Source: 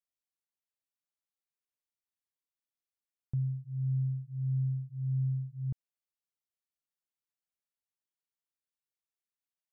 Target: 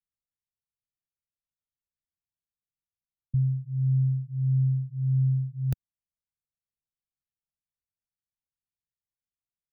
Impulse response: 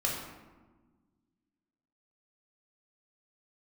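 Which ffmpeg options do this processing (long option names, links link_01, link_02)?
-filter_complex "[0:a]acrossover=split=130|170[link_01][link_02][link_03];[link_03]acrusher=bits=4:dc=4:mix=0:aa=0.000001[link_04];[link_01][link_02][link_04]amix=inputs=3:normalize=0,crystalizer=i=1.5:c=0,volume=8.5dB"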